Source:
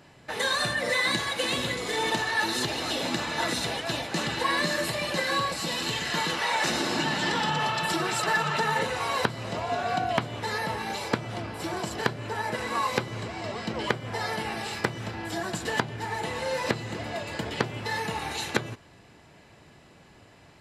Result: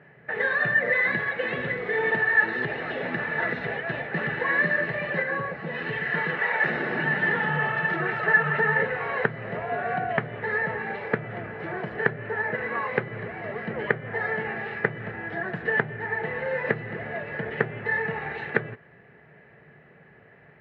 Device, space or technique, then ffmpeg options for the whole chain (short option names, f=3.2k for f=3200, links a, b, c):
bass cabinet: -filter_complex "[0:a]asplit=3[a][b][c];[a]afade=t=out:st=5.22:d=0.02[d];[b]highshelf=f=2.2k:g=-10,afade=t=in:st=5.22:d=0.02,afade=t=out:st=5.73:d=0.02[e];[c]afade=t=in:st=5.73:d=0.02[f];[d][e][f]amix=inputs=3:normalize=0,highpass=82,equalizer=f=89:t=q:w=4:g=-9,equalizer=f=150:t=q:w=4:g=5,equalizer=f=300:t=q:w=4:g=-9,equalizer=f=430:t=q:w=4:g=7,equalizer=f=1k:t=q:w=4:g=-7,equalizer=f=1.8k:t=q:w=4:g=10,lowpass=f=2.2k:w=0.5412,lowpass=f=2.2k:w=1.3066"